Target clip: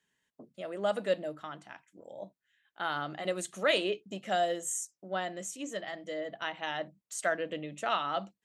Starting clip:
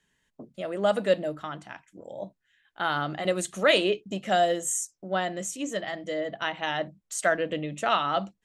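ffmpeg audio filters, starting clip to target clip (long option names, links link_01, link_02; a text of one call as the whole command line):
ffmpeg -i in.wav -af "highpass=frequency=180:poles=1,volume=-6dB" out.wav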